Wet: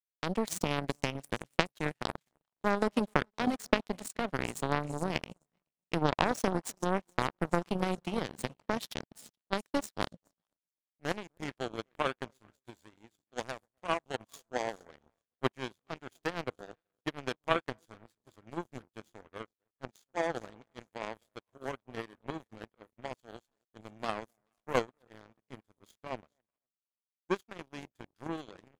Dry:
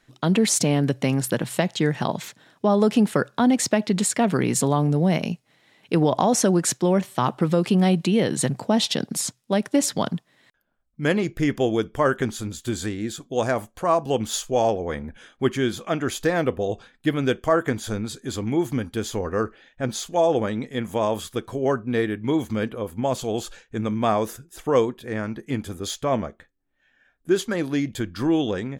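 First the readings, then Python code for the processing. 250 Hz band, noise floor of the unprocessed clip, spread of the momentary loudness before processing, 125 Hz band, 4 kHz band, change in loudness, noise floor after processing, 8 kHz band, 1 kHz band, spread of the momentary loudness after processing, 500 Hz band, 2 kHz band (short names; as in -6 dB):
-15.5 dB, -66 dBFS, 10 LU, -15.5 dB, -11.0 dB, -12.0 dB, under -85 dBFS, -19.0 dB, -9.0 dB, 19 LU, -13.5 dB, -7.0 dB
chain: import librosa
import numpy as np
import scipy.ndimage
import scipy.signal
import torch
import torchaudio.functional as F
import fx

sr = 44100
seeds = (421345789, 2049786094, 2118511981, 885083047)

y = fx.echo_split(x, sr, split_hz=830.0, low_ms=256, high_ms=424, feedback_pct=52, wet_db=-14)
y = fx.power_curve(y, sr, exponent=3.0)
y = F.gain(torch.from_numpy(y), 3.0).numpy()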